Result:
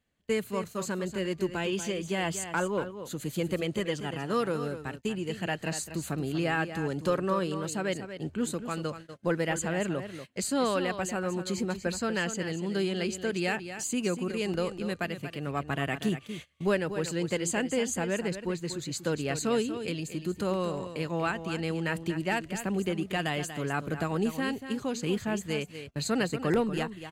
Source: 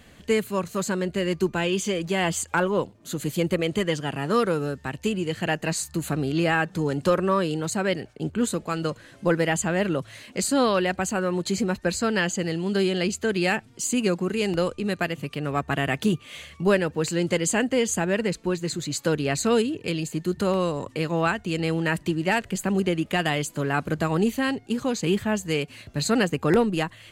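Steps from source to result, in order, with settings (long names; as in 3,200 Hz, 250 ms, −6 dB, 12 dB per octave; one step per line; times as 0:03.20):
single-tap delay 238 ms −10.5 dB
noise gate −35 dBFS, range −22 dB
level −6.5 dB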